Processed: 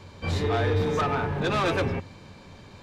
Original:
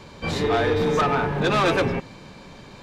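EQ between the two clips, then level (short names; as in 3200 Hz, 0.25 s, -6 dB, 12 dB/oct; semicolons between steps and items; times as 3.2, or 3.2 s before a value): bell 91 Hz +14 dB 0.32 oct; -5.0 dB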